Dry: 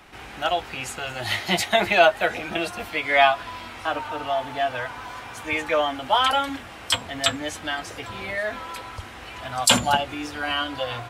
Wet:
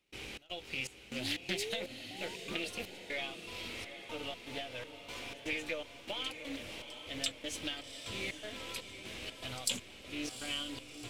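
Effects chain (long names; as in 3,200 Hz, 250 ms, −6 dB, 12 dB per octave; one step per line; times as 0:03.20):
gain on one half-wave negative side −3 dB
downward compressor 6 to 1, threshold −32 dBFS, peak gain reduction 18.5 dB
sound drawn into the spectrogram rise, 0:01.08–0:02.60, 220–1,300 Hz −40 dBFS
flat-topped bell 1,100 Hz −14 dB
gate pattern ".xx.xxx." 121 BPM −24 dB
low-shelf EQ 310 Hz −7 dB
feedback delay with all-pass diffusion 781 ms, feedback 53%, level −9 dB
highs frequency-modulated by the lows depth 0.2 ms
level +1 dB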